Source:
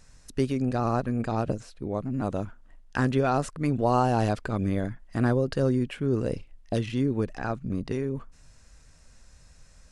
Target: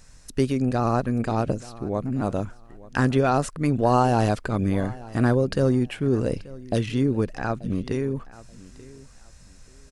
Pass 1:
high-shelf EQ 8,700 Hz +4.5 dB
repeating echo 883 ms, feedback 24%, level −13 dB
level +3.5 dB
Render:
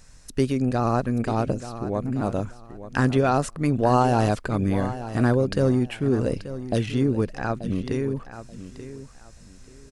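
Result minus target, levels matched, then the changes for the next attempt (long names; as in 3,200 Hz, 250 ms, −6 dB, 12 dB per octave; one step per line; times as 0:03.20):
echo-to-direct +7 dB
change: repeating echo 883 ms, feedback 24%, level −20 dB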